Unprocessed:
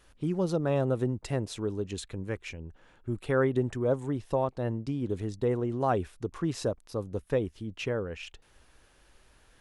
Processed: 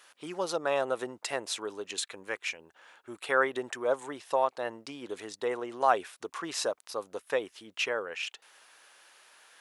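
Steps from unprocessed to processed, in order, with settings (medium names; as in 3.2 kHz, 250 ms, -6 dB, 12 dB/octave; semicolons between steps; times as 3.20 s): high-pass 810 Hz 12 dB/octave; trim +7.5 dB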